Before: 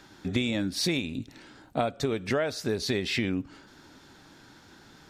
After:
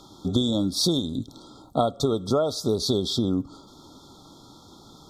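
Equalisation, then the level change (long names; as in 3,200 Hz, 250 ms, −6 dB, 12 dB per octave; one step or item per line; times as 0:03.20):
linear-phase brick-wall band-stop 1,400–3,200 Hz
parametric band 2,500 Hz +7.5 dB 0.3 octaves
+5.0 dB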